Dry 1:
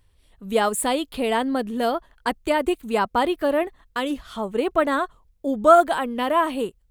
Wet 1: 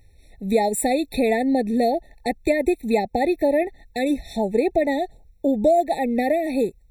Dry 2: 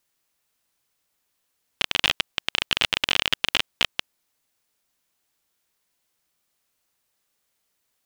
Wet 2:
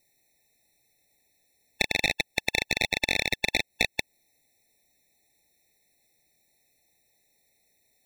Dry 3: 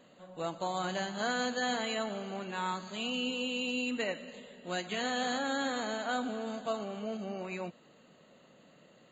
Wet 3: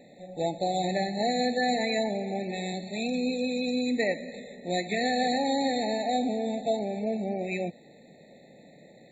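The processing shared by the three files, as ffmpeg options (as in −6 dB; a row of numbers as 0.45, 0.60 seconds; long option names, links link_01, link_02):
-af "acompressor=threshold=-26dB:ratio=2.5,afftfilt=real='re*eq(mod(floor(b*sr/1024/880),2),0)':imag='im*eq(mod(floor(b*sr/1024/880),2),0)':win_size=1024:overlap=0.75,volume=8dB"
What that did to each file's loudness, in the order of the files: +0.5, −3.0, +6.0 LU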